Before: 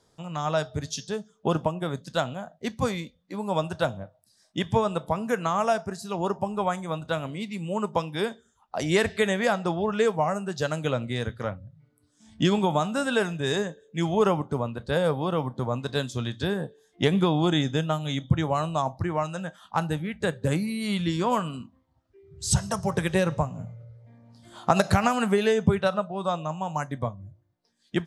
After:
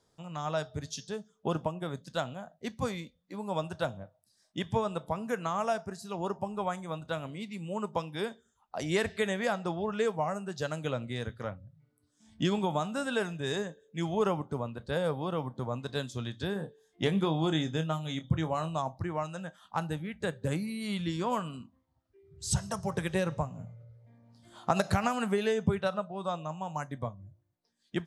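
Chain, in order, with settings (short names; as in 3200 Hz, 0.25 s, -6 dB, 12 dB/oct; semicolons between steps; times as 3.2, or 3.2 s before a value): 16.53–18.79 doubler 25 ms -10 dB; gain -6.5 dB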